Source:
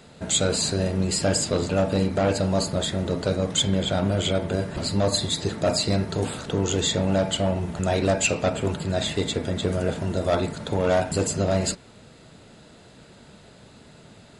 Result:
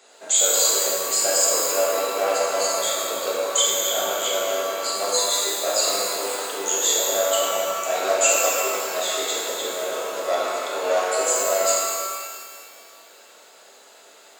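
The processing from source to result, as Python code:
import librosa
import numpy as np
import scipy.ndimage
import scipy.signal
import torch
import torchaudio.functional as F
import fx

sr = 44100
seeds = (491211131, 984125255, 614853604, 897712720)

y = scipy.signal.sosfilt(scipy.signal.butter(4, 430.0, 'highpass', fs=sr, output='sos'), x)
y = fx.peak_eq(y, sr, hz=6800.0, db=9.5, octaves=0.38)
y = fx.rev_shimmer(y, sr, seeds[0], rt60_s=2.0, semitones=12, shimmer_db=-8, drr_db=-5.5)
y = y * librosa.db_to_amplitude(-4.0)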